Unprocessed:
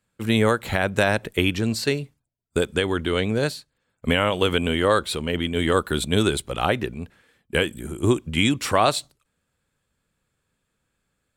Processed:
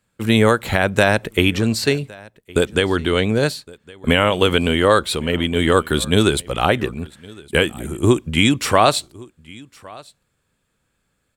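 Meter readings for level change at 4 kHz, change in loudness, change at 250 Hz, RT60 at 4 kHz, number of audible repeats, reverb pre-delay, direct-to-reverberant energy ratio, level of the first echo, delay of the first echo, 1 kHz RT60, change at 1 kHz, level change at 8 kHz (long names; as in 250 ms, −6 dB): +5.0 dB, +5.0 dB, +5.0 dB, no reverb audible, 1, no reverb audible, no reverb audible, −23.5 dB, 1,112 ms, no reverb audible, +5.0 dB, +5.0 dB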